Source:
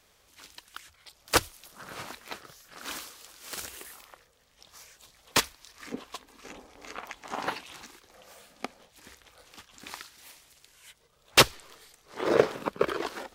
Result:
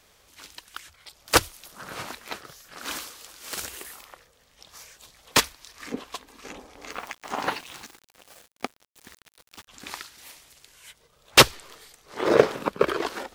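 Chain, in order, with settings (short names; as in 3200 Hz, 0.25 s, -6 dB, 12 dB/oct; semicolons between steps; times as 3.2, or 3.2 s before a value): 6.9–9.68 sample gate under -48 dBFS; gain +4.5 dB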